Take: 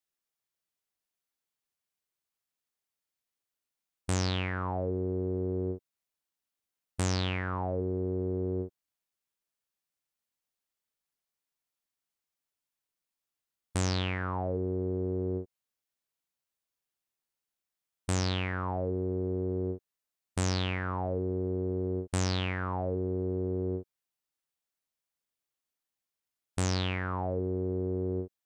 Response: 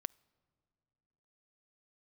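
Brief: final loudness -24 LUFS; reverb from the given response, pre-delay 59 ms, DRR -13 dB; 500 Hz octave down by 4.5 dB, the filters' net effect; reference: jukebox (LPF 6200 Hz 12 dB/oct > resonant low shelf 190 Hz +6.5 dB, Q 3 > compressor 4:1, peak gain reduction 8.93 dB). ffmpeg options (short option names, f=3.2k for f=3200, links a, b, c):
-filter_complex "[0:a]equalizer=f=500:t=o:g=-4,asplit=2[a][b];[1:a]atrim=start_sample=2205,adelay=59[c];[b][c]afir=irnorm=-1:irlink=0,volume=16dB[d];[a][d]amix=inputs=2:normalize=0,lowpass=6.2k,lowshelf=f=190:t=q:w=3:g=6.5,acompressor=threshold=-18dB:ratio=4,volume=-2.5dB"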